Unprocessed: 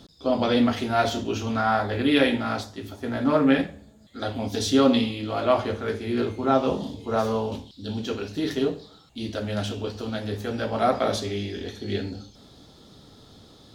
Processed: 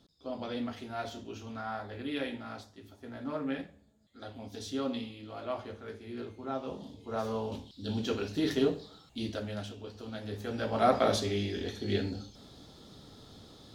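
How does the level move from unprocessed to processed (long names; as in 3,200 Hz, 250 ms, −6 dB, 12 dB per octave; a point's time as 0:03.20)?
0:06.66 −15.5 dB
0:07.94 −3 dB
0:09.19 −3 dB
0:09.77 −14.5 dB
0:10.94 −2.5 dB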